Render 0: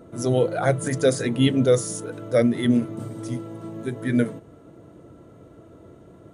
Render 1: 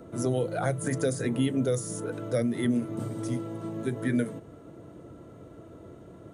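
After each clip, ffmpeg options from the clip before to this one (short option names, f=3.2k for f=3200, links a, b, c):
-filter_complex "[0:a]acrossover=split=240|2400|6800[a][b][c][d];[a]acompressor=threshold=-30dB:ratio=4[e];[b]acompressor=threshold=-28dB:ratio=4[f];[c]acompressor=threshold=-51dB:ratio=4[g];[d]acompressor=threshold=-38dB:ratio=4[h];[e][f][g][h]amix=inputs=4:normalize=0"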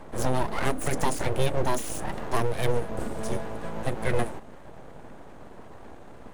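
-af "aeval=exprs='abs(val(0))':c=same,volume=4.5dB"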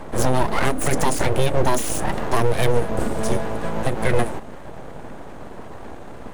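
-af "alimiter=limit=-15.5dB:level=0:latency=1:release=121,volume=9dB"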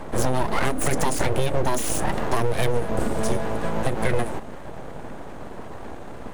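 -af "acompressor=threshold=-15dB:ratio=6"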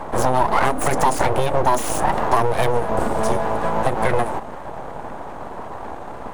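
-af "equalizer=f=910:t=o:w=1.4:g=10.5"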